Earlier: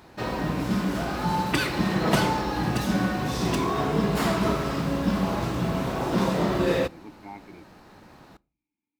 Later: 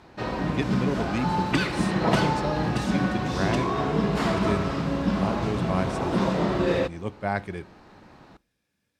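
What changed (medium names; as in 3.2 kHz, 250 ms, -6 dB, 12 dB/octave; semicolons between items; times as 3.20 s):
speech: remove vowel filter u; background: add distance through air 64 m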